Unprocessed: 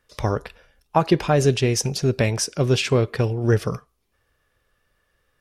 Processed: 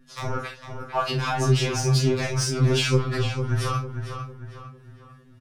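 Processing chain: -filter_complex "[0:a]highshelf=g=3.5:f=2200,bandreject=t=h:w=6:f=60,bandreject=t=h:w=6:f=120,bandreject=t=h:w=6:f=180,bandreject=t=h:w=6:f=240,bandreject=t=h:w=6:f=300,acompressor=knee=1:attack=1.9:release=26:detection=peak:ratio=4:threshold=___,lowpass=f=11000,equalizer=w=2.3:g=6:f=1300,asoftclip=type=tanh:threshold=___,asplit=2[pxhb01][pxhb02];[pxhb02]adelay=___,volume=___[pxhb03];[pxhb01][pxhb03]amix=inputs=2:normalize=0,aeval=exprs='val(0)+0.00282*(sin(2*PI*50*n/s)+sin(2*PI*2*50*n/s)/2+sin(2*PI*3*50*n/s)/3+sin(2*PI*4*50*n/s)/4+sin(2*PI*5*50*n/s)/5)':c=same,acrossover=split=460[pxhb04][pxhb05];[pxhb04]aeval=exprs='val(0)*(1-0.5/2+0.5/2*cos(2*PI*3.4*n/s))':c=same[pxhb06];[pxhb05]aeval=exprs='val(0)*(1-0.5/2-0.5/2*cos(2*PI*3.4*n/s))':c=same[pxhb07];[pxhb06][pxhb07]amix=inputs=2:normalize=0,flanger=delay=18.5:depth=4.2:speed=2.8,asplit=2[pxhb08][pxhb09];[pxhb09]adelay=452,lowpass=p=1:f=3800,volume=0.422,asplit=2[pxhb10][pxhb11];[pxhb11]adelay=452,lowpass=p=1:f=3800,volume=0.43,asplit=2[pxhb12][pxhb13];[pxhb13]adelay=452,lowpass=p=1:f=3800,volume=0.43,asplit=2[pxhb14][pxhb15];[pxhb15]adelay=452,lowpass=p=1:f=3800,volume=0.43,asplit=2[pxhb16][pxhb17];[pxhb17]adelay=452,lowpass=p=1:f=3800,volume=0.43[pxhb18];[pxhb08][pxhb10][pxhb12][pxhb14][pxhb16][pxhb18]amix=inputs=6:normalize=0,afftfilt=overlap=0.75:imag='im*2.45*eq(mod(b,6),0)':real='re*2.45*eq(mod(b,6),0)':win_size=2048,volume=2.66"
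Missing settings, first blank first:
0.0631, 0.126, 44, 0.447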